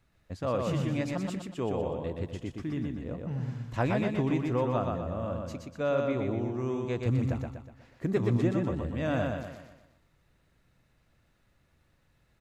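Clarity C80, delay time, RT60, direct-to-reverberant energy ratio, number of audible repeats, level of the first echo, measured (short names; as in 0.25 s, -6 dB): none, 0.122 s, none, none, 5, -3.5 dB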